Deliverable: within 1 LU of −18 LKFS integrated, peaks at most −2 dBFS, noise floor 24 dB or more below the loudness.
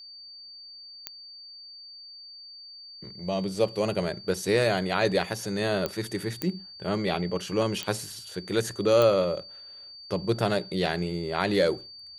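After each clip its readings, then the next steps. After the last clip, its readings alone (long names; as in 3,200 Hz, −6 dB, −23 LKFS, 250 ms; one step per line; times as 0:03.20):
number of clicks 5; interfering tone 4,600 Hz; level of the tone −43 dBFS; integrated loudness −27.5 LKFS; sample peak −9.0 dBFS; target loudness −18.0 LKFS
→ click removal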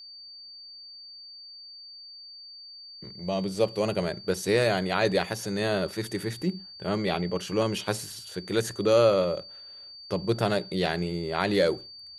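number of clicks 0; interfering tone 4,600 Hz; level of the tone −43 dBFS
→ notch filter 4,600 Hz, Q 30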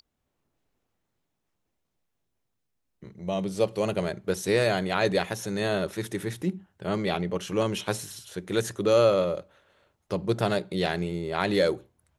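interfering tone none found; integrated loudness −27.5 LKFS; sample peak −9.0 dBFS; target loudness −18.0 LKFS
→ level +9.5 dB
brickwall limiter −2 dBFS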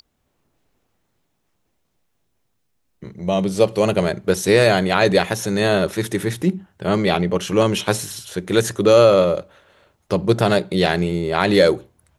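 integrated loudness −18.0 LKFS; sample peak −2.0 dBFS; background noise floor −70 dBFS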